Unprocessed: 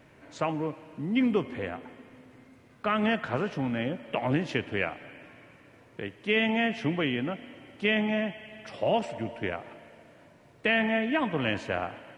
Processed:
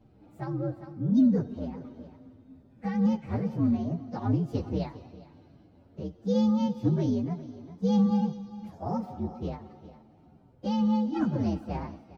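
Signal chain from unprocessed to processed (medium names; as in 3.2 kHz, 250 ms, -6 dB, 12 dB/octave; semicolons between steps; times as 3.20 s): frequency axis rescaled in octaves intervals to 126%; FFT filter 110 Hz 0 dB, 170 Hz +4 dB, 2 kHz -16 dB, 3 kHz -21 dB; delay 405 ms -16 dB; random flutter of the level, depth 55%; trim +7.5 dB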